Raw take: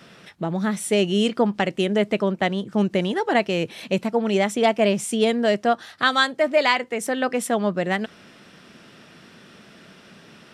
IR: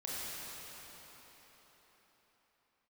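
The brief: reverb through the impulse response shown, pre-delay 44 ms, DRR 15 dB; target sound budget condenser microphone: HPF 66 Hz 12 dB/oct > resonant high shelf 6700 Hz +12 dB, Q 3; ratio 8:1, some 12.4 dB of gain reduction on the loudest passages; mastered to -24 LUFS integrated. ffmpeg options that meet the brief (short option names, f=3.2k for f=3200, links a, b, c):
-filter_complex "[0:a]acompressor=threshold=-27dB:ratio=8,asplit=2[a][b];[1:a]atrim=start_sample=2205,adelay=44[c];[b][c]afir=irnorm=-1:irlink=0,volume=-18dB[d];[a][d]amix=inputs=2:normalize=0,highpass=66,highshelf=f=6.7k:t=q:w=3:g=12,volume=1.5dB"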